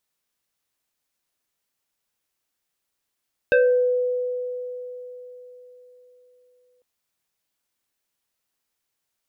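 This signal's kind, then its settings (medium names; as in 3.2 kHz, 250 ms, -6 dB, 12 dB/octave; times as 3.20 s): FM tone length 3.30 s, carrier 497 Hz, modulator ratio 2.13, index 1.4, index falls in 0.51 s exponential, decay 4.08 s, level -12.5 dB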